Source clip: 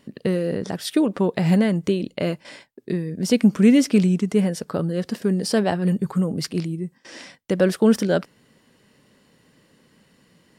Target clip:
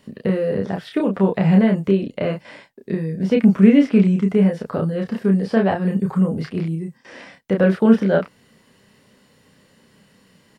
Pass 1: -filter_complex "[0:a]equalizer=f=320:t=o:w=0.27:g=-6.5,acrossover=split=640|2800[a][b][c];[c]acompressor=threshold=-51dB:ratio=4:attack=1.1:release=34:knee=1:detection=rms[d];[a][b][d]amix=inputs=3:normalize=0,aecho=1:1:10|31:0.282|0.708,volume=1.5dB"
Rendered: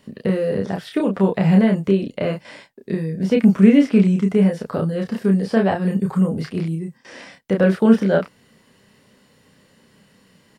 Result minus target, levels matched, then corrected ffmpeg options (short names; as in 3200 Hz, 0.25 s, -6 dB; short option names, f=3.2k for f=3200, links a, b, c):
compressor: peak gain reduction -6.5 dB
-filter_complex "[0:a]equalizer=f=320:t=o:w=0.27:g=-6.5,acrossover=split=640|2800[a][b][c];[c]acompressor=threshold=-59.5dB:ratio=4:attack=1.1:release=34:knee=1:detection=rms[d];[a][b][d]amix=inputs=3:normalize=0,aecho=1:1:10|31:0.282|0.708,volume=1.5dB"